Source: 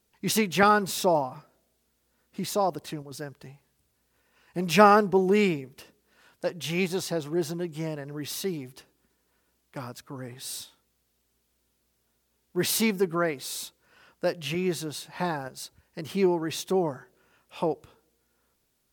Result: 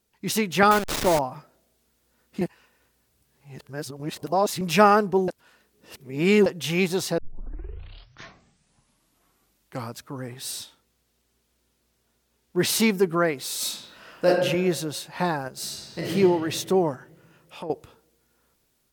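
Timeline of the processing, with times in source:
0:00.71–0:01.19: hold until the input has moved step −23 dBFS
0:02.41–0:04.61: reverse
0:05.28–0:06.46: reverse
0:07.18: tape start 2.82 s
0:10.51–0:12.80: high-shelf EQ 12,000 Hz −7.5 dB
0:13.56–0:14.27: thrown reverb, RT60 1.1 s, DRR −6.5 dB
0:15.52–0:16.09: thrown reverb, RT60 2.4 s, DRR −6.5 dB
0:16.95–0:17.70: downward compressor 2 to 1, threshold −45 dBFS
whole clip: automatic gain control gain up to 5 dB; level −1 dB

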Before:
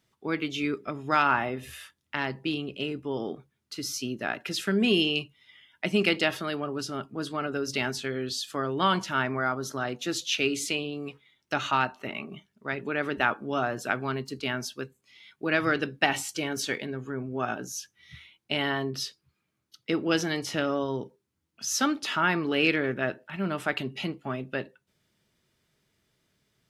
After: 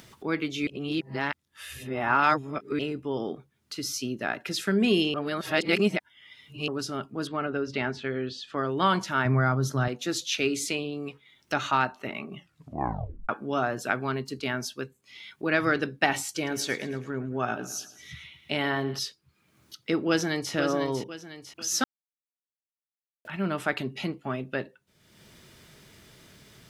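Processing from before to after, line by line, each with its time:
0:00.67–0:02.79: reverse
0:05.14–0:06.68: reverse
0:07.27–0:08.58: low-pass filter 2,900 Hz
0:09.25–0:09.88: parametric band 130 Hz +14 dB 1.1 octaves
0:12.34: tape stop 0.95 s
0:16.34–0:18.99: repeating echo 109 ms, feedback 47%, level −16 dB
0:20.08–0:20.53: delay throw 500 ms, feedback 35%, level −7.5 dB
0:21.84–0:23.25: silence
whole clip: dynamic equaliser 2,900 Hz, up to −5 dB, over −45 dBFS, Q 3.9; upward compression, threshold −38 dBFS; level +1 dB

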